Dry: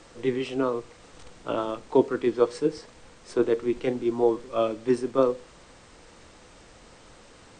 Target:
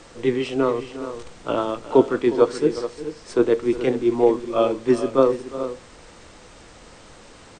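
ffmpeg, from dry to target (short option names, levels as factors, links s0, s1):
-af "aecho=1:1:359|423:0.168|0.251,volume=1.78"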